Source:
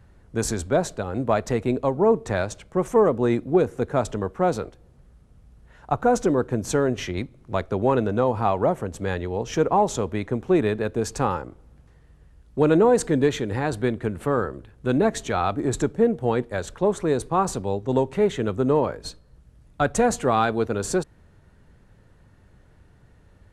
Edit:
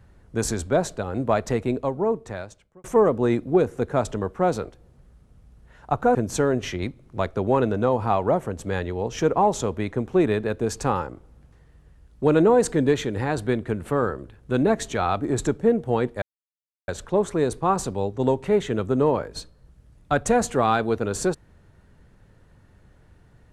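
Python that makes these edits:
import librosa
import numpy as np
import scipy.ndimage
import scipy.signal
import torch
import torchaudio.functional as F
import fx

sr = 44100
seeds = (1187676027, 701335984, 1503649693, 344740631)

y = fx.edit(x, sr, fx.fade_out_span(start_s=1.52, length_s=1.32),
    fx.cut(start_s=6.15, length_s=0.35),
    fx.insert_silence(at_s=16.57, length_s=0.66), tone=tone)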